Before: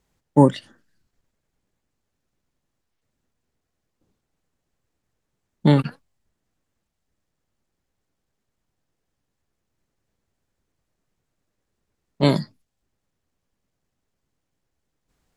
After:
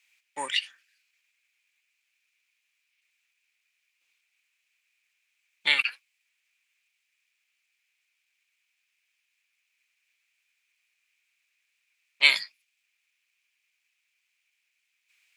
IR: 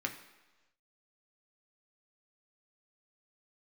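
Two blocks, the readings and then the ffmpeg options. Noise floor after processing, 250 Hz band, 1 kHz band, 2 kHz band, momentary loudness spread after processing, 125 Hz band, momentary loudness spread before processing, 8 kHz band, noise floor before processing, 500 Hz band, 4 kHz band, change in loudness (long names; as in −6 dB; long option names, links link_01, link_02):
−78 dBFS, −34.5 dB, −12.0 dB, +13.0 dB, 18 LU, below −40 dB, 13 LU, can't be measured, −79 dBFS, −23.0 dB, +8.5 dB, −4.5 dB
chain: -filter_complex "[0:a]highpass=frequency=2400:width_type=q:width=7.9,asplit=2[link_01][link_02];[link_02]asoftclip=type=tanh:threshold=-13.5dB,volume=-9dB[link_03];[link_01][link_03]amix=inputs=2:normalize=0,volume=1dB"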